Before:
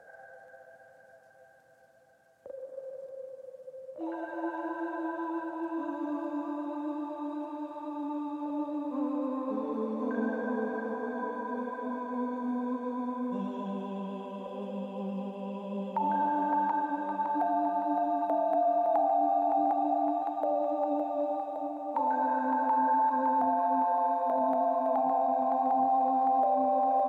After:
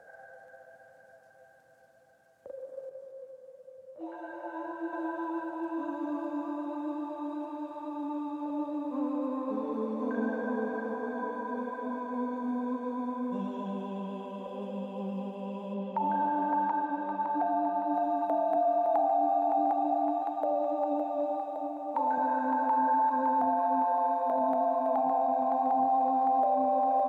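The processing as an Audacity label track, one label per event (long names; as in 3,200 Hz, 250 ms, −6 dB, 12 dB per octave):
2.890000	4.930000	micro pitch shift up and down each way 19 cents
15.740000	17.940000	high-frequency loss of the air 95 metres
18.560000	22.180000	high-pass filter 160 Hz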